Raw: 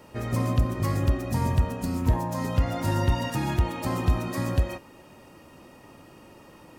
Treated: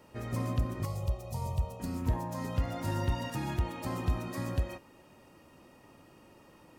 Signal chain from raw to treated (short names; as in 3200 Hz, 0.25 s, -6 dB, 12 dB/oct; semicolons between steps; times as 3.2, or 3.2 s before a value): 0.85–1.8 fixed phaser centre 680 Hz, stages 4; 2.57–3.35 crackle 63/s -34 dBFS; gain -7.5 dB